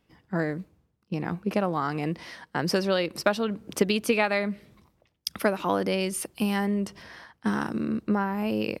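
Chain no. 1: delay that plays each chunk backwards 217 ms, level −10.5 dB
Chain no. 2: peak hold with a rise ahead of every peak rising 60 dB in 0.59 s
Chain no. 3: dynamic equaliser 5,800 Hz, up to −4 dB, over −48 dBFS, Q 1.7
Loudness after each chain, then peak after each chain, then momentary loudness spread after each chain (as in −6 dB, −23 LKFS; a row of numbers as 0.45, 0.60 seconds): −27.5, −26.0, −28.0 LKFS; −8.0, −6.0, −8.0 dBFS; 11, 12, 11 LU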